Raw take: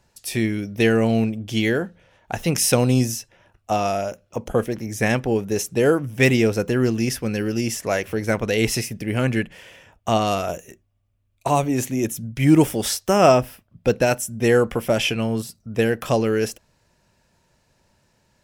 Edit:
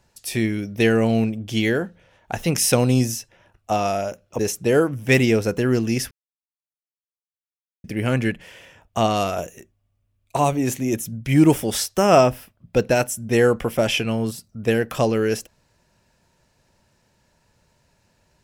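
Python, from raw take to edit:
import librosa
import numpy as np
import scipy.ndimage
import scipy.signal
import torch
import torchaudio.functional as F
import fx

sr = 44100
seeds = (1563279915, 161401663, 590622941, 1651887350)

y = fx.edit(x, sr, fx.cut(start_s=4.39, length_s=1.11),
    fx.silence(start_s=7.22, length_s=1.73), tone=tone)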